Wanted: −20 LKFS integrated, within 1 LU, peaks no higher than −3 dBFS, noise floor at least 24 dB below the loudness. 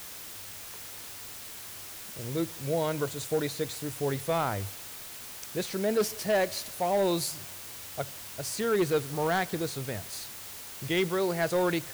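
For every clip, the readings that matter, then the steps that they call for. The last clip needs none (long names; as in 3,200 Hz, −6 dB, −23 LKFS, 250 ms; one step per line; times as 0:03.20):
share of clipped samples 0.7%; peaks flattened at −20.5 dBFS; background noise floor −43 dBFS; target noise floor −56 dBFS; integrated loudness −31.5 LKFS; sample peak −20.5 dBFS; target loudness −20.0 LKFS
→ clipped peaks rebuilt −20.5 dBFS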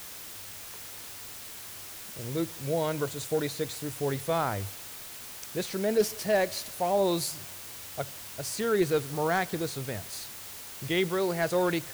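share of clipped samples 0.0%; background noise floor −43 dBFS; target noise floor −55 dBFS
→ noise reduction from a noise print 12 dB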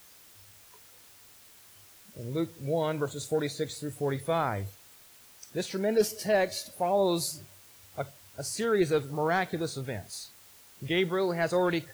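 background noise floor −55 dBFS; integrated loudness −30.0 LKFS; sample peak −14.5 dBFS; target loudness −20.0 LKFS
→ level +10 dB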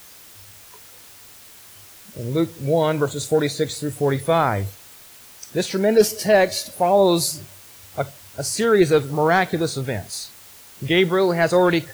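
integrated loudness −20.0 LKFS; sample peak −4.5 dBFS; background noise floor −45 dBFS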